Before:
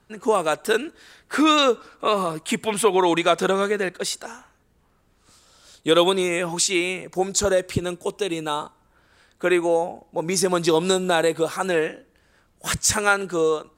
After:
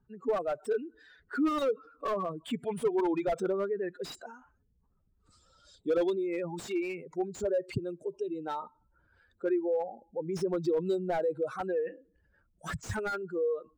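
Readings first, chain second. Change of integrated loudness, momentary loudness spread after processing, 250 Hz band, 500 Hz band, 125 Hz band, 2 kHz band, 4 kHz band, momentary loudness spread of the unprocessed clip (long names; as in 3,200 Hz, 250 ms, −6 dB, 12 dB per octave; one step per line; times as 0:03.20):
−11.0 dB, 10 LU, −9.0 dB, −9.0 dB, −10.0 dB, −17.0 dB, −23.0 dB, 10 LU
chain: expanding power law on the bin magnitudes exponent 2.3
slew-rate limiting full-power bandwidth 95 Hz
level −9 dB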